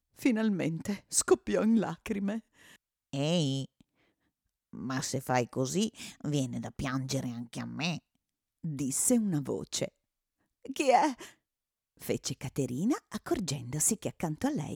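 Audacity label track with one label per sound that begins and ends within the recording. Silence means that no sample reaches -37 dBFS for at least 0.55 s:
3.130000	3.650000	sound
4.740000	7.970000	sound
8.640000	9.880000	sound
10.650000	11.260000	sound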